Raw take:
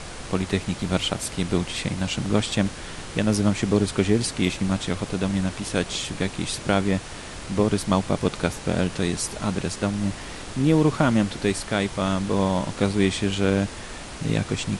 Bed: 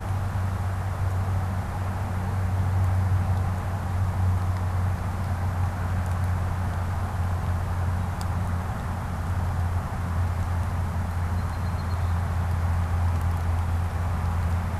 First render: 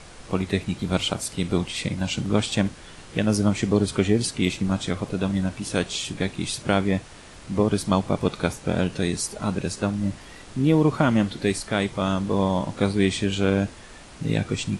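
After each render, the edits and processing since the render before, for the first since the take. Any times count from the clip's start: noise print and reduce 8 dB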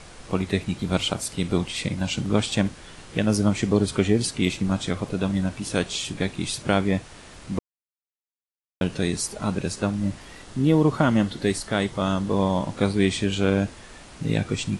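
7.59–8.81 mute; 10.44–12.3 notch 2400 Hz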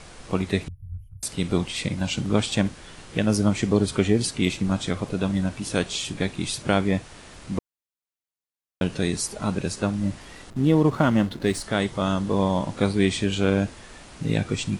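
0.68–1.23 inverse Chebyshev band-stop 230–8200 Hz, stop band 50 dB; 10.5–11.62 backlash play -36.5 dBFS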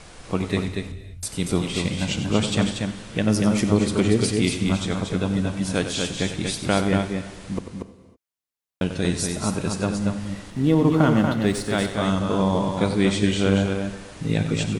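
loudspeakers at several distances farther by 32 m -11 dB, 81 m -5 dB; non-linear reverb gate 0.35 s flat, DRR 12 dB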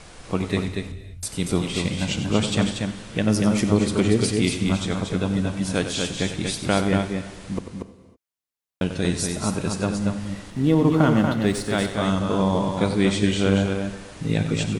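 nothing audible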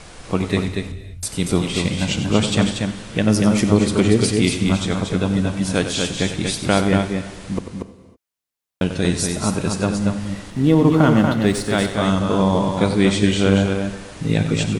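gain +4 dB; limiter -2 dBFS, peak gain reduction 1 dB

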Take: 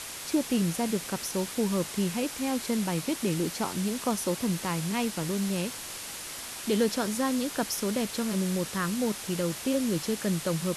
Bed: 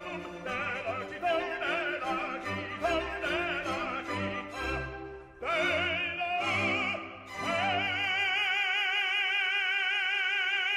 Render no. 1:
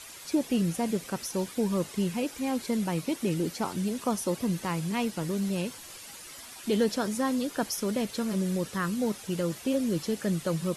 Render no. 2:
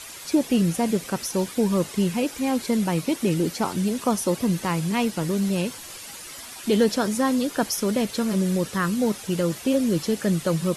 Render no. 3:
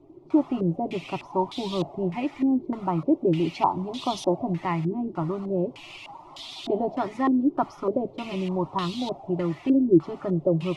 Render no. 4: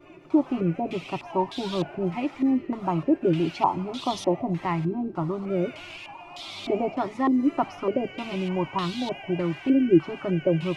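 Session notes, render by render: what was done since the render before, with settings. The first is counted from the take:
denoiser 10 dB, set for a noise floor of -40 dBFS
gain +6 dB
fixed phaser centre 320 Hz, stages 8; stepped low-pass 3.3 Hz 360–3600 Hz
add bed -15 dB

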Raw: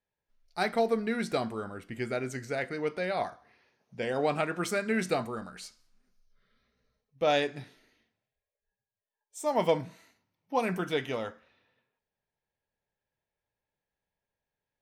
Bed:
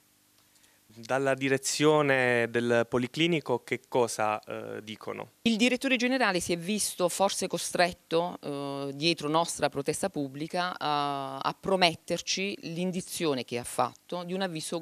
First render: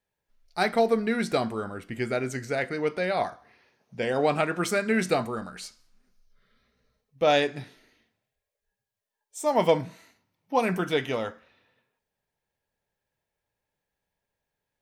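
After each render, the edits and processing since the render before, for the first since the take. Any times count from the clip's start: gain +4.5 dB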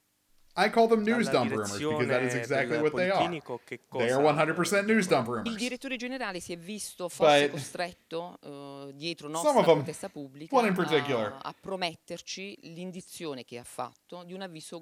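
add bed -8.5 dB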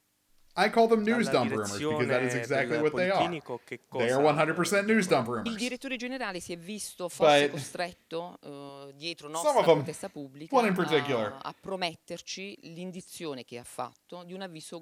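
8.69–9.65 bell 220 Hz -13.5 dB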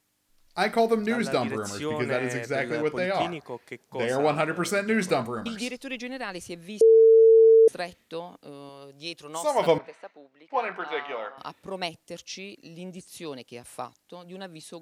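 0.69–1.15 high shelf 9600 Hz +8 dB; 6.81–7.68 bleep 449 Hz -11.5 dBFS; 9.78–11.38 BPF 620–2400 Hz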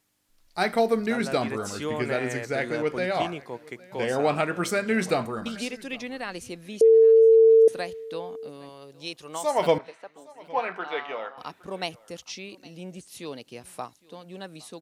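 echo 0.813 s -23 dB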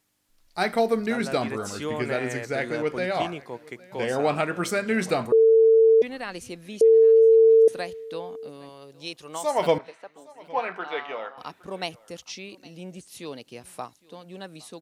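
5.32–6.02 bleep 448 Hz -12.5 dBFS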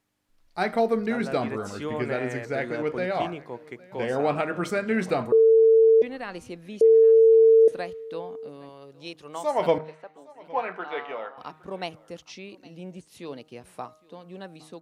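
high shelf 3500 Hz -10.5 dB; de-hum 155.8 Hz, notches 9

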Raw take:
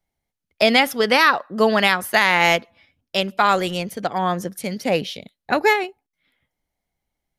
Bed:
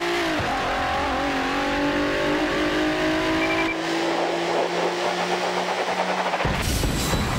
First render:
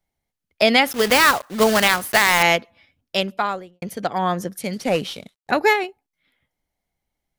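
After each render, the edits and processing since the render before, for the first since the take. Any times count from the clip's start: 0.87–2.44 block floating point 3-bit; 3.16–3.82 studio fade out; 4.73–5.51 CVSD 64 kbps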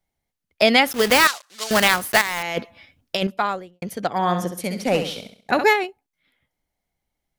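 1.27–1.71 band-pass 5500 Hz, Q 0.91; 2.21–3.27 negative-ratio compressor -25 dBFS; 4.08–5.64 flutter echo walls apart 11.5 m, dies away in 0.48 s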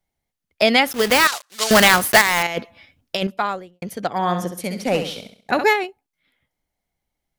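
1.32–2.47 sample leveller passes 2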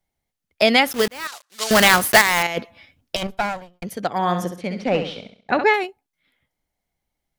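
1.08–1.94 fade in; 3.16–3.84 minimum comb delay 1.3 ms; 4.56–5.74 LPF 3400 Hz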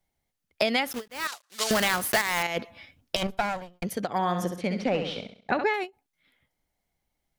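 compressor 4:1, threshold -23 dBFS, peak gain reduction 12.5 dB; ending taper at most 350 dB/s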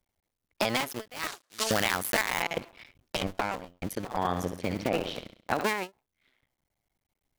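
cycle switcher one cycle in 2, muted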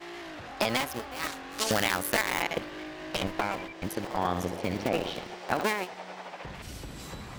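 add bed -18.5 dB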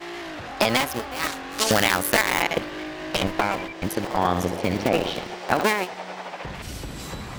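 gain +7 dB

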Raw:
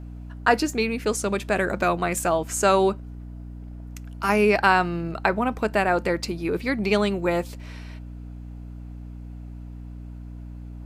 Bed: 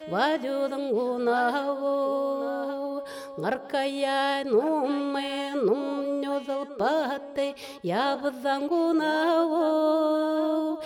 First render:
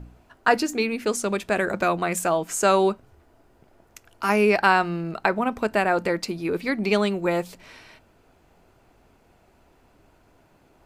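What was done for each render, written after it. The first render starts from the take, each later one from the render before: de-hum 60 Hz, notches 5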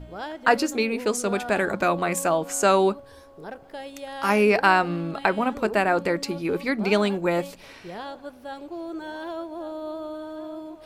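add bed -10.5 dB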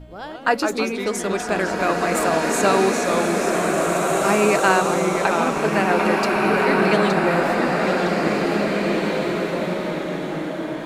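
echoes that change speed 0.103 s, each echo -2 st, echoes 2, each echo -6 dB; bloom reverb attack 2.12 s, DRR -1.5 dB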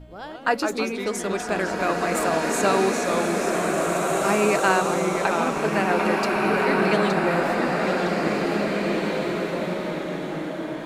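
gain -3 dB

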